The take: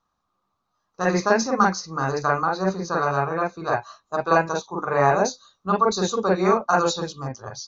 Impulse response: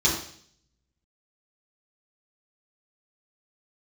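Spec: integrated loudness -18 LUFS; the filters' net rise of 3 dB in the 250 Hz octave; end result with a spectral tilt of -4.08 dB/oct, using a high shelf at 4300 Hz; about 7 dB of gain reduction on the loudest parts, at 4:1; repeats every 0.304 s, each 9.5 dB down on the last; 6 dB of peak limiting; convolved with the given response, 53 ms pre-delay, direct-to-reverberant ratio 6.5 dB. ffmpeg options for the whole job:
-filter_complex "[0:a]equalizer=f=250:t=o:g=4.5,highshelf=f=4.3k:g=9,acompressor=threshold=-20dB:ratio=4,alimiter=limit=-15.5dB:level=0:latency=1,aecho=1:1:304|608|912|1216:0.335|0.111|0.0365|0.012,asplit=2[a][b];[1:a]atrim=start_sample=2205,adelay=53[c];[b][c]afir=irnorm=-1:irlink=0,volume=-20dB[d];[a][d]amix=inputs=2:normalize=0,volume=7.5dB"

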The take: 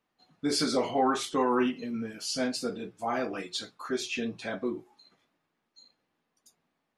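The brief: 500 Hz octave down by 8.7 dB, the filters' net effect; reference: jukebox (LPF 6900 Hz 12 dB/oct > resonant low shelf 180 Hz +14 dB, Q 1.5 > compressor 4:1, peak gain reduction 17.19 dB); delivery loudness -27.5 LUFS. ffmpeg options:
-af "lowpass=6.9k,lowshelf=f=180:t=q:w=1.5:g=14,equalizer=f=500:t=o:g=-9,acompressor=threshold=-45dB:ratio=4,volume=18.5dB"

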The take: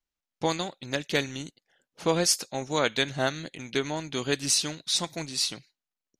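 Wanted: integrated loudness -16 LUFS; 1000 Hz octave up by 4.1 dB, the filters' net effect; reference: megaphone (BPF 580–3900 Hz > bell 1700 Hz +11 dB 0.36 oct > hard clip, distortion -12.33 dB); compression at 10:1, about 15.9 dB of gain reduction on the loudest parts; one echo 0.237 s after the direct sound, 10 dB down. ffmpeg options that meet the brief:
-af "equalizer=f=1k:t=o:g=5,acompressor=threshold=-35dB:ratio=10,highpass=580,lowpass=3.9k,equalizer=f=1.7k:t=o:w=0.36:g=11,aecho=1:1:237:0.316,asoftclip=type=hard:threshold=-32.5dB,volume=26dB"

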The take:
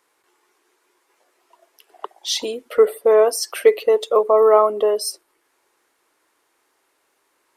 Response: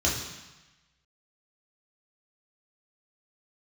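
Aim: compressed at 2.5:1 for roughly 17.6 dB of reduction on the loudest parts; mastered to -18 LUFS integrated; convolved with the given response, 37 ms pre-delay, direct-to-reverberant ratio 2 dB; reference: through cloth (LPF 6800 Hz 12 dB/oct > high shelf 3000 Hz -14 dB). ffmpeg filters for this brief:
-filter_complex "[0:a]acompressor=threshold=-36dB:ratio=2.5,asplit=2[a][b];[1:a]atrim=start_sample=2205,adelay=37[c];[b][c]afir=irnorm=-1:irlink=0,volume=-13.5dB[d];[a][d]amix=inputs=2:normalize=0,lowpass=6.8k,highshelf=f=3k:g=-14,volume=13.5dB"

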